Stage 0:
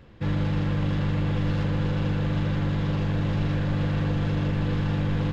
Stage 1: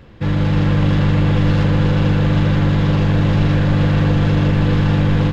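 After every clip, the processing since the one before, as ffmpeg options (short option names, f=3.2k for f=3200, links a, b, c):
-af "dynaudnorm=f=310:g=3:m=3dB,volume=7.5dB"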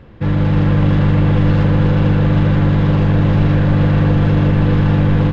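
-af "highshelf=f=3.6k:g=-12,volume=2dB"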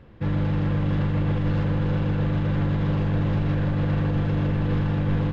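-af "alimiter=limit=-7dB:level=0:latency=1,volume=-8dB"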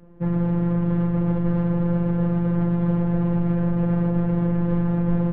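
-af "adynamicsmooth=sensitivity=0.5:basefreq=1.1k,afftfilt=real='hypot(re,im)*cos(PI*b)':imag='0':win_size=1024:overlap=0.75,volume=5.5dB"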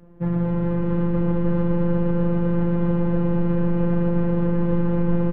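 -af "aecho=1:1:240|432|585.6|708.5|806.8:0.631|0.398|0.251|0.158|0.1"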